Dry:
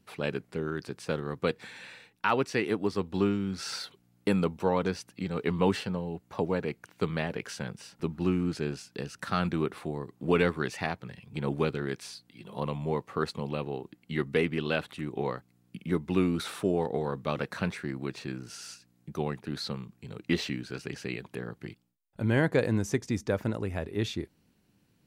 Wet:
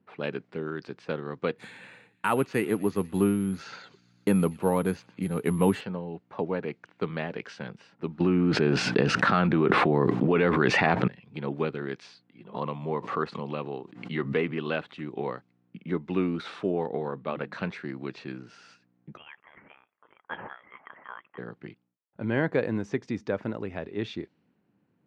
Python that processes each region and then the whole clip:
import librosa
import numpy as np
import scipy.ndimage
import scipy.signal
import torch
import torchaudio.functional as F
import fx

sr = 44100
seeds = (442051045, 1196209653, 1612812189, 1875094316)

y = fx.chain(x, sr, fx.low_shelf(hz=190.0, db=11.0),
    fx.echo_wet_highpass(ms=122, feedback_pct=74, hz=2500.0, wet_db=-17.5),
    fx.resample_bad(factor=4, down='filtered', up='zero_stuff'), at=(1.58, 5.81))
y = fx.chain(y, sr, fx.high_shelf(hz=4200.0, db=-6.5),
    fx.env_flatten(amount_pct=100), at=(8.2, 11.08))
y = fx.chain(y, sr, fx.peak_eq(hz=1100.0, db=4.5, octaves=0.38),
    fx.pre_swell(db_per_s=84.0), at=(12.54, 14.73))
y = fx.chain(y, sr, fx.moving_average(points=7),
    fx.hum_notches(base_hz=50, count=6), at=(17.08, 17.53))
y = fx.chain(y, sr, fx.highpass(hz=1300.0, slope=12),
    fx.freq_invert(carrier_hz=3600), at=(19.17, 21.38))
y = fx.env_lowpass_down(y, sr, base_hz=2900.0, full_db=-26.0)
y = scipy.signal.sosfilt(scipy.signal.butter(2, 150.0, 'highpass', fs=sr, output='sos'), y)
y = fx.env_lowpass(y, sr, base_hz=1500.0, full_db=-26.0)